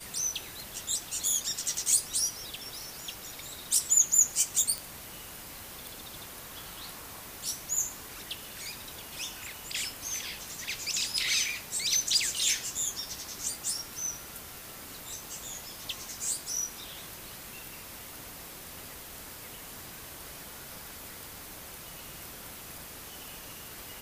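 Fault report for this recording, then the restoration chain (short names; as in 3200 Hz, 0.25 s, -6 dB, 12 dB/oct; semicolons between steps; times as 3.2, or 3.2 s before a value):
4.78 pop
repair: de-click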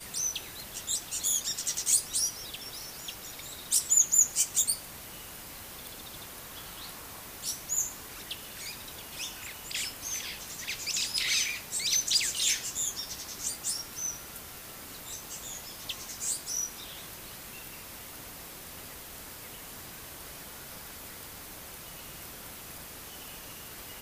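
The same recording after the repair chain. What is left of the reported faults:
none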